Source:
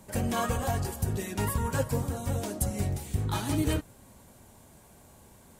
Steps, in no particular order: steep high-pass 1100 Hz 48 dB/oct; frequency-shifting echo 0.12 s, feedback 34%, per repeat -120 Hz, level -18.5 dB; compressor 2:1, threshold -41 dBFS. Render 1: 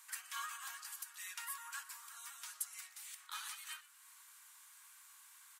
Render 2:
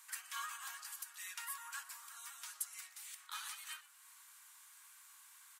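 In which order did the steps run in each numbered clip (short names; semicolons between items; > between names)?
compressor > frequency-shifting echo > steep high-pass; compressor > steep high-pass > frequency-shifting echo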